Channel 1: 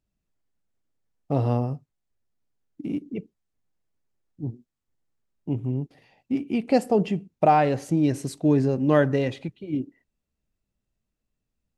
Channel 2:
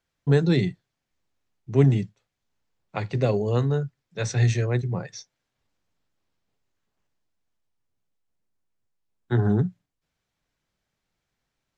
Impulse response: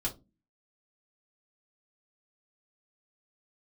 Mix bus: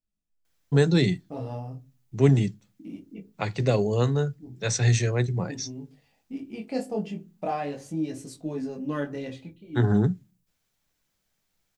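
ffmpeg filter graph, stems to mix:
-filter_complex "[0:a]lowpass=8300,flanger=delay=18.5:depth=5.2:speed=0.36,volume=-11.5dB,asplit=2[link_01][link_02];[link_02]volume=-5.5dB[link_03];[1:a]adelay=450,volume=-0.5dB,asplit=2[link_04][link_05];[link_05]volume=-23.5dB[link_06];[2:a]atrim=start_sample=2205[link_07];[link_03][link_06]amix=inputs=2:normalize=0[link_08];[link_08][link_07]afir=irnorm=-1:irlink=0[link_09];[link_01][link_04][link_09]amix=inputs=3:normalize=0,aemphasis=mode=production:type=50kf"

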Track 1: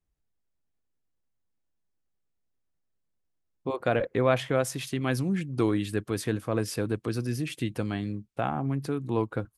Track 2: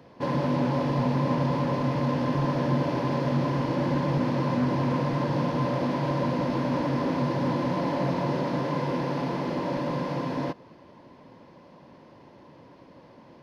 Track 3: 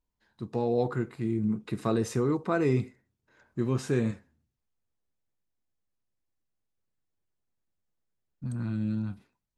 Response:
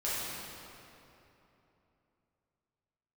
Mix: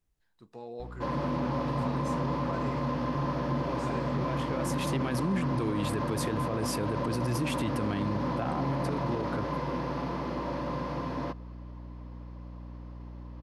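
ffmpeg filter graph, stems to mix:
-filter_complex "[0:a]alimiter=limit=-20dB:level=0:latency=1:release=170,volume=3dB[link_01];[1:a]equalizer=frequency=1200:width_type=o:width=0.38:gain=8,aeval=exprs='val(0)+0.0158*(sin(2*PI*60*n/s)+sin(2*PI*2*60*n/s)/2+sin(2*PI*3*60*n/s)/3+sin(2*PI*4*60*n/s)/4+sin(2*PI*5*60*n/s)/5)':channel_layout=same,adelay=800,volume=-5.5dB[link_02];[2:a]lowshelf=frequency=340:gain=-12,volume=-10dB,asplit=2[link_03][link_04];[link_04]apad=whole_len=422234[link_05];[link_01][link_05]sidechaincompress=threshold=-49dB:ratio=8:attack=16:release=1430[link_06];[link_06][link_02][link_03]amix=inputs=3:normalize=0,alimiter=limit=-21.5dB:level=0:latency=1:release=26"

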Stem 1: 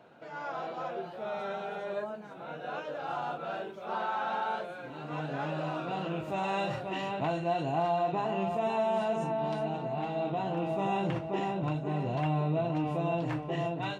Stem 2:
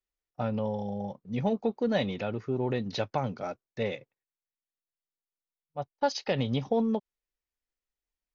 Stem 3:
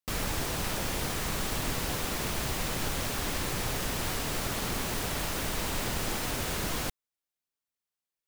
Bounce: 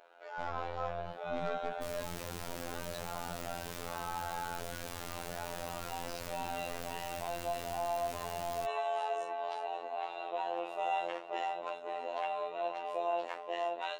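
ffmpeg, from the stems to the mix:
ffmpeg -i stem1.wav -i stem2.wav -i stem3.wav -filter_complex "[0:a]highpass=frequency=470:width=0.5412,highpass=frequency=470:width=1.3066,volume=1.5dB[link_01];[1:a]aeval=exprs='(tanh(70.8*val(0)+0.7)-tanh(0.7))/70.8':channel_layout=same,volume=0.5dB[link_02];[2:a]adelay=1750,volume=-5dB[link_03];[link_01][link_02][link_03]amix=inputs=3:normalize=0,afftfilt=real='hypot(re,im)*cos(PI*b)':imag='0':win_size=2048:overlap=0.75,alimiter=limit=-19.5dB:level=0:latency=1" out.wav

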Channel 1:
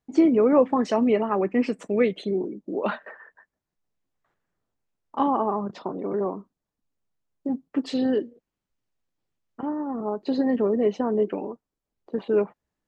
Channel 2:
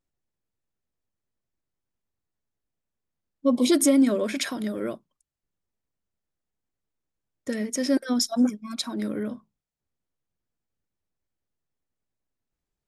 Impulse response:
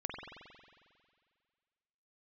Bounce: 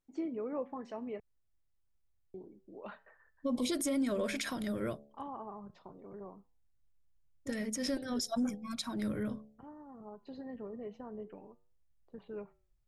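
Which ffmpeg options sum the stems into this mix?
-filter_complex "[0:a]flanger=delay=7.9:depth=4.6:regen=-87:speed=0.33:shape=triangular,adynamicequalizer=threshold=0.00398:dfrequency=2900:dqfactor=0.7:tfrequency=2900:tqfactor=0.7:attack=5:release=100:ratio=0.375:range=3.5:mode=cutabove:tftype=highshelf,volume=-14.5dB,asplit=3[link_01][link_02][link_03];[link_01]atrim=end=1.2,asetpts=PTS-STARTPTS,afade=type=out:start_time=1.196:duration=0.004:curve=hsin[link_04];[link_02]atrim=start=1.2:end=2.34,asetpts=PTS-STARTPTS,volume=0[link_05];[link_03]atrim=start=2.34,asetpts=PTS-STARTPTS,afade=type=in:duration=0.004:curve=hsin[link_06];[link_04][link_05][link_06]concat=n=3:v=0:a=1,asplit=2[link_07][link_08];[1:a]bandreject=frequency=71.8:width_type=h:width=4,bandreject=frequency=143.6:width_type=h:width=4,bandreject=frequency=215.4:width_type=h:width=4,bandreject=frequency=287.2:width_type=h:width=4,bandreject=frequency=359:width_type=h:width=4,bandreject=frequency=430.8:width_type=h:width=4,bandreject=frequency=502.6:width_type=h:width=4,bandreject=frequency=574.4:width_type=h:width=4,bandreject=frequency=646.2:width_type=h:width=4,bandreject=frequency=718:width_type=h:width=4,bandreject=frequency=789.8:width_type=h:width=4,bandreject=frequency=861.6:width_type=h:width=4,volume=-4dB[link_09];[link_08]apad=whole_len=567701[link_10];[link_09][link_10]sidechaincompress=threshold=-42dB:ratio=8:attack=5.4:release=139[link_11];[link_07][link_11]amix=inputs=2:normalize=0,asubboost=boost=8.5:cutoff=97,alimiter=level_in=1.5dB:limit=-24dB:level=0:latency=1:release=66,volume=-1.5dB"

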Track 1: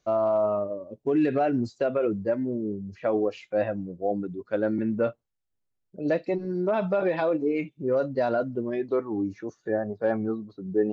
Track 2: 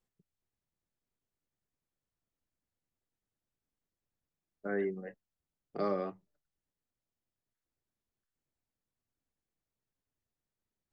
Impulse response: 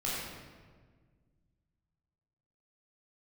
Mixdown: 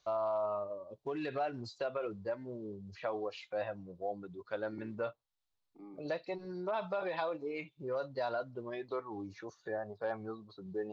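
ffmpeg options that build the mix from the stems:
-filter_complex "[0:a]equalizer=frequency=250:width_type=o:width=1:gain=-9,equalizer=frequency=1000:width_type=o:width=1:gain=9,equalizer=frequency=4000:width_type=o:width=1:gain=12,volume=-5.5dB[link_01];[1:a]asplit=3[link_02][link_03][link_04];[link_02]bandpass=frequency=300:width_type=q:width=8,volume=0dB[link_05];[link_03]bandpass=frequency=870:width_type=q:width=8,volume=-6dB[link_06];[link_04]bandpass=frequency=2240:width_type=q:width=8,volume=-9dB[link_07];[link_05][link_06][link_07]amix=inputs=3:normalize=0,lowshelf=frequency=400:gain=6.5,volume=-11dB[link_08];[link_01][link_08]amix=inputs=2:normalize=0,acompressor=threshold=-46dB:ratio=1.5"

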